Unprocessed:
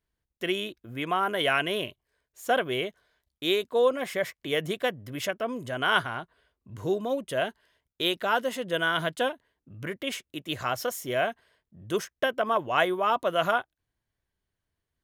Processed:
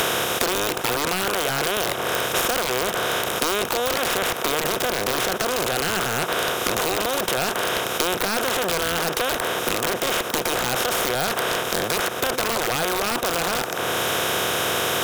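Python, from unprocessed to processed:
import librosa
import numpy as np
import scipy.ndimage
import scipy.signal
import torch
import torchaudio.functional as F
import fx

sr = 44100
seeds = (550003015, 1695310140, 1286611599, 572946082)

p1 = fx.bin_compress(x, sr, power=0.2)
p2 = fx.peak_eq(p1, sr, hz=13000.0, db=7.0, octaves=1.8)
p3 = fx.over_compress(p2, sr, threshold_db=-20.0, ratio=-0.5)
p4 = p2 + (p3 * librosa.db_to_amplitude(-2.5))
p5 = (np.mod(10.0 ** (5.5 / 20.0) * p4 + 1.0, 2.0) - 1.0) / 10.0 ** (5.5 / 20.0)
p6 = fx.band_squash(p5, sr, depth_pct=100)
y = p6 * librosa.db_to_amplitude(-9.0)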